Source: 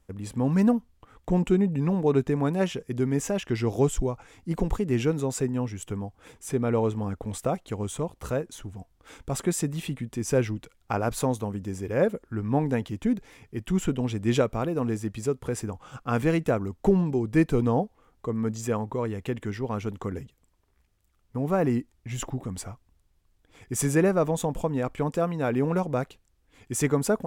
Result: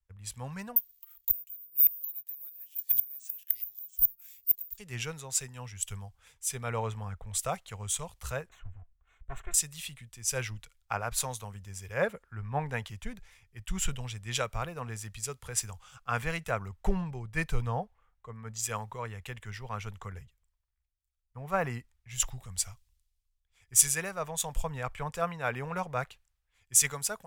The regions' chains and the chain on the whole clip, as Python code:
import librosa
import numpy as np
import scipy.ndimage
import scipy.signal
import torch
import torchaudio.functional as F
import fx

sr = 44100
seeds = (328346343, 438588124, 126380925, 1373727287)

y = fx.chain(x, sr, fx.low_shelf(hz=110.0, db=-7.5),
    fx.gate_flip(shuts_db=-20.0, range_db=-25),
    fx.resample_bad(factor=3, down='none', up='zero_stuff'), at=(0.76, 4.78))
y = fx.chain(y, sr, fx.lower_of_two(delay_ms=2.8),
    fx.moving_average(points=9), at=(8.49, 9.54))
y = fx.tone_stack(y, sr, knobs='10-0-10')
y = fx.rider(y, sr, range_db=4, speed_s=0.5)
y = fx.band_widen(y, sr, depth_pct=70)
y = y * librosa.db_to_amplitude(2.5)